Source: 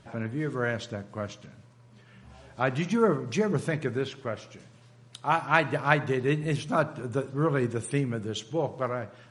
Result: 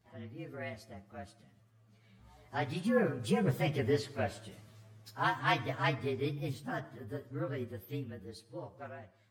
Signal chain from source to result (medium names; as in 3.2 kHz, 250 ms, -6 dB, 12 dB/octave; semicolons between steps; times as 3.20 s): frequency axis rescaled in octaves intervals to 112%; Doppler pass-by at 4.24 s, 7 m/s, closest 5.4 m; trim +2 dB